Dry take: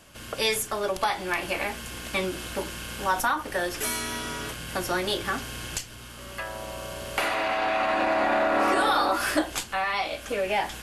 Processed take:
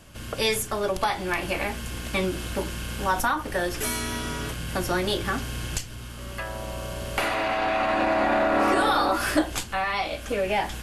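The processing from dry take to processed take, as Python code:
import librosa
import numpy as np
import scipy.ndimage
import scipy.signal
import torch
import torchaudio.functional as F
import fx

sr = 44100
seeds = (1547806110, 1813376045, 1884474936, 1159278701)

y = fx.low_shelf(x, sr, hz=230.0, db=9.5)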